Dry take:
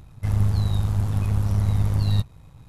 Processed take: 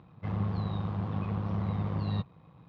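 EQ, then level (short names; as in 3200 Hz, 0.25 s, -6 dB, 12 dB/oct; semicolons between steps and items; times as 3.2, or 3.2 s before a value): speaker cabinet 130–3600 Hz, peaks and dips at 180 Hz +9 dB, 320 Hz +5 dB, 490 Hz +6 dB, 740 Hz +4 dB, 1100 Hz +8 dB; -6.5 dB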